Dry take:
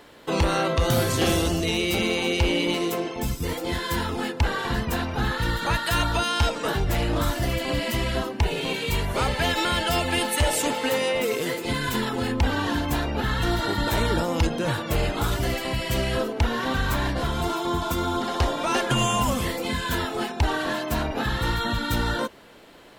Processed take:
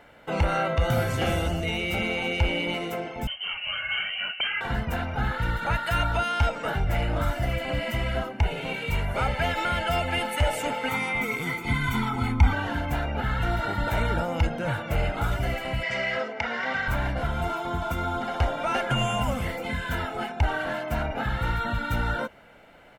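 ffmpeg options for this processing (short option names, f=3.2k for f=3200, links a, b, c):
-filter_complex "[0:a]asettb=1/sr,asplit=3[a][b][c];[a]atrim=end=3.274[d];[b]atrim=start=3.27:end=4.61,asetpts=PTS-STARTPTS,afade=t=in:d=0.004:c=qsin,afade=t=out:st=1.336:d=0.004:c=qsin,lowpass=f=2.7k:t=q:w=0.5098,lowpass=f=2.7k:t=q:w=0.6013,lowpass=f=2.7k:t=q:w=0.9,lowpass=f=2.7k:t=q:w=2.563,afreqshift=-3200[e];[c]atrim=start=4.606[f];[d][e]acrossfade=d=0.004:c1=hsin:c2=qsin[g];[g][f]acrossfade=d=0.004:c1=qsin:c2=hsin,asettb=1/sr,asplit=3[h][i][j];[h]atrim=end=10.884[k];[i]atrim=start=10.88:end=12.53,asetpts=PTS-STARTPTS,afade=t=in:d=0.004:c=qsin,afade=t=out:st=1.646:d=0.004:c=qsin,aecho=1:1:0.9:0.92,atrim=end_sample=72765[l];[j]atrim=start=12.526[m];[k][l]acrossfade=d=0.004:c1=hsin:c2=qsin[n];[n][m]acrossfade=d=0.004:c1=qsin:c2=hsin,asettb=1/sr,asplit=3[o][p][q];[o]atrim=end=15.834[r];[p]atrim=start=15.83:end=16.88,asetpts=PTS-STARTPTS,afade=t=in:d=0.004:c=qsin,afade=t=out:st=1.046:d=0.004:c=qsin,highpass=240,equalizer=f=320:t=q:w=4:g=-10,equalizer=f=2k:t=q:w=4:g=10,equalizer=f=5.1k:t=q:w=4:g=8,lowpass=f=7.2k:w=0.5412,lowpass=f=7.2k:w=1.3066[s];[q]atrim=start=16.876[t];[r][s]acrossfade=d=0.004:c1=hsin:c2=qsin[u];[u][t]acrossfade=d=0.004:c1=qsin:c2=hsin,highshelf=f=3.1k:t=q:w=1.5:g=-8,aecho=1:1:1.4:0.49,volume=-3.5dB"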